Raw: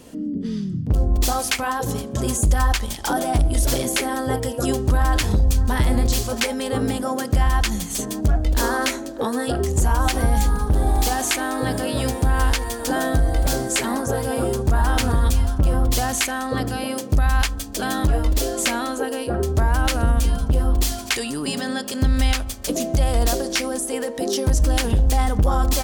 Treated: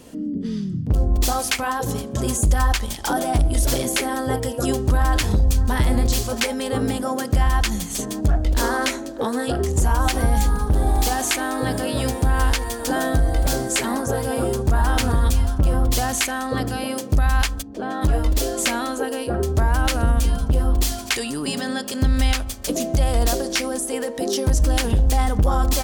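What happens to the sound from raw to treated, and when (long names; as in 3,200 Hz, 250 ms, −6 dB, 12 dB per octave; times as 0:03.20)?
0:07.89–0:09.83: highs frequency-modulated by the lows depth 0.21 ms
0:17.61–0:18.01: resonant band-pass 170 Hz → 830 Hz, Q 0.64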